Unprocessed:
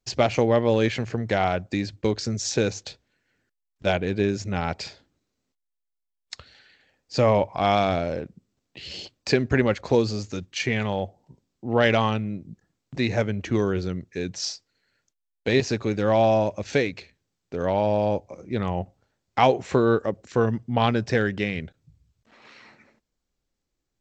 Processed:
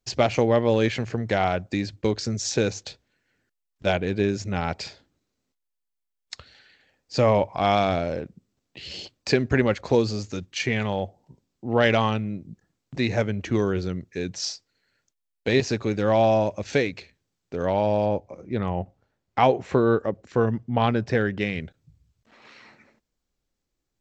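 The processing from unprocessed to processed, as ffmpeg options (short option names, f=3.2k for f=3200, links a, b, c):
-filter_complex "[0:a]asettb=1/sr,asplit=3[a][b][c];[a]atrim=end=18.064[d];[b]atrim=start=18.06:end=21.41,asetpts=PTS-STARTPTS,afade=t=in:d=0.004:c=qsin,afade=t=out:st=3.346:d=0.004:c=qsin,highshelf=f=4.1k:g=-10[e];[c]atrim=start=21.406[f];[d][e]acrossfade=d=0.004:c1=hsin:c2=qsin[g];[g][f]acrossfade=d=0.004:c1=qsin:c2=hsin"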